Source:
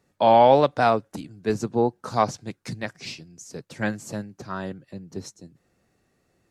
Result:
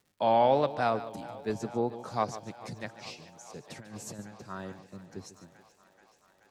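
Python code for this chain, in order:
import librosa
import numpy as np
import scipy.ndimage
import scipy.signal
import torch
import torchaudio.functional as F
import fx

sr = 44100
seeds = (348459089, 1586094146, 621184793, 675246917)

y = fx.echo_thinned(x, sr, ms=431, feedback_pct=80, hz=260.0, wet_db=-19.0)
y = fx.over_compress(y, sr, threshold_db=-36.0, ratio=-1.0, at=(3.67, 4.19))
y = fx.dmg_crackle(y, sr, seeds[0], per_s=130.0, level_db=-47.0)
y = y + 10.0 ** (-14.0 / 20.0) * np.pad(y, (int(145 * sr / 1000.0), 0))[:len(y)]
y = y * 10.0 ** (-8.5 / 20.0)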